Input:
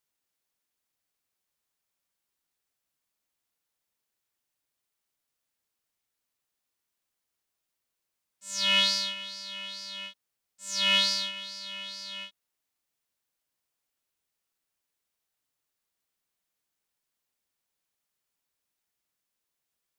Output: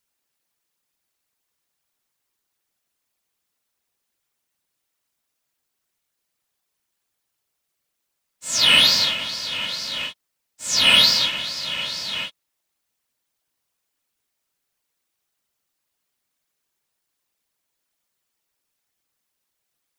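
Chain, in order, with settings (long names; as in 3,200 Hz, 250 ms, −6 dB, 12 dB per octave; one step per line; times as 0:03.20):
leveller curve on the samples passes 1
in parallel at −4.5 dB: hard clipping −19 dBFS, distortion −11 dB
on the sum: random phases in short frames
level +4 dB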